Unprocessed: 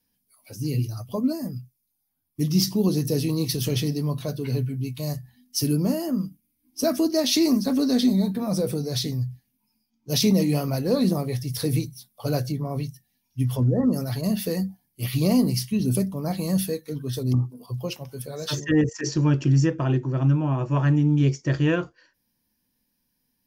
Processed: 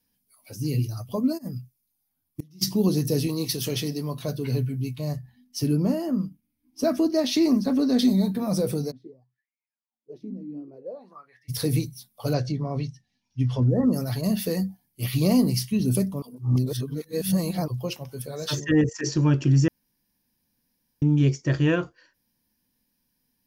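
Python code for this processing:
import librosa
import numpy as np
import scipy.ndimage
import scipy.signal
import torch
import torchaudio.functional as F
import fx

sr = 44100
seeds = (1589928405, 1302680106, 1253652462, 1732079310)

y = fx.gate_flip(x, sr, shuts_db=-20.0, range_db=-29, at=(1.37, 2.61), fade=0.02)
y = fx.low_shelf(y, sr, hz=150.0, db=-11.5, at=(3.27, 4.24))
y = fx.high_shelf(y, sr, hz=4300.0, db=-11.0, at=(4.95, 7.99))
y = fx.wah_lfo(y, sr, hz=fx.line((8.9, 0.87), (11.48, 0.33)), low_hz=250.0, high_hz=2200.0, q=13.0, at=(8.9, 11.48), fade=0.02)
y = fx.lowpass(y, sr, hz=6200.0, slope=24, at=(12.33, 13.7))
y = fx.edit(y, sr, fx.reverse_span(start_s=16.22, length_s=1.46),
    fx.room_tone_fill(start_s=19.68, length_s=1.34), tone=tone)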